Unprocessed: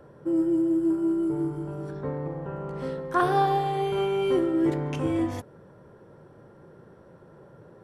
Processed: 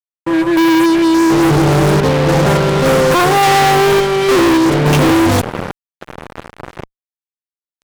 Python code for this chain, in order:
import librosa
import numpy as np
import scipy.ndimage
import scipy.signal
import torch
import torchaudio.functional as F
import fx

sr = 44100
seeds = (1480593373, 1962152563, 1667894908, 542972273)

y = fx.tremolo_random(x, sr, seeds[0], hz=3.5, depth_pct=95)
y = fx.wow_flutter(y, sr, seeds[1], rate_hz=2.1, depth_cents=17.0)
y = fx.fuzz(y, sr, gain_db=51.0, gate_db=-50.0)
y = y * librosa.db_to_amplitude(4.0)